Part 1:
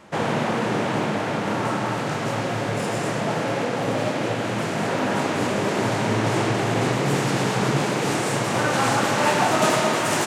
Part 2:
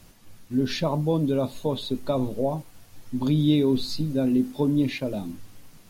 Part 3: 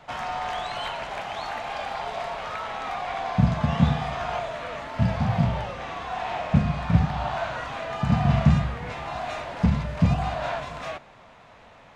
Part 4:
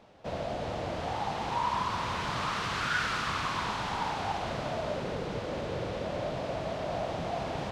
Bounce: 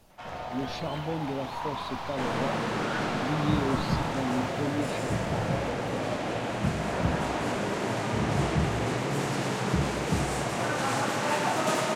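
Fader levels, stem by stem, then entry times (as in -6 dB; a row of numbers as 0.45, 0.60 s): -7.5, -9.5, -9.5, -6.0 dB; 2.05, 0.00, 0.10, 0.00 s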